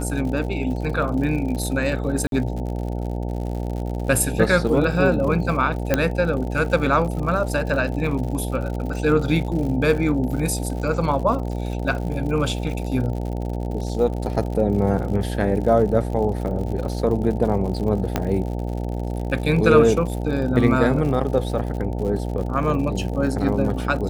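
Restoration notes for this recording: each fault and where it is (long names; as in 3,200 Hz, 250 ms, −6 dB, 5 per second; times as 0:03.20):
mains buzz 60 Hz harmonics 15 −26 dBFS
surface crackle 89 per second −30 dBFS
0:02.27–0:02.32: drop-out 52 ms
0:05.94: click −4 dBFS
0:18.16: click −6 dBFS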